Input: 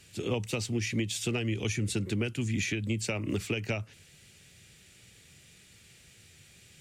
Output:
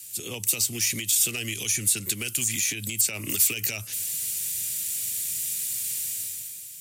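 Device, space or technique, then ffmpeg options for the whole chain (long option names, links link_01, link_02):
FM broadcast chain: -filter_complex "[0:a]highpass=frequency=63:width=0.5412,highpass=frequency=63:width=1.3066,dynaudnorm=framelen=110:gausssize=11:maxgain=12.5dB,acrossover=split=1200|2900[link_01][link_02][link_03];[link_01]acompressor=threshold=-26dB:ratio=4[link_04];[link_02]acompressor=threshold=-28dB:ratio=4[link_05];[link_03]acompressor=threshold=-30dB:ratio=4[link_06];[link_04][link_05][link_06]amix=inputs=3:normalize=0,aemphasis=mode=production:type=75fm,alimiter=limit=-16dB:level=0:latency=1:release=102,asoftclip=type=hard:threshold=-19.5dB,lowpass=frequency=15000:width=0.5412,lowpass=frequency=15000:width=1.3066,aemphasis=mode=production:type=75fm,volume=-6dB"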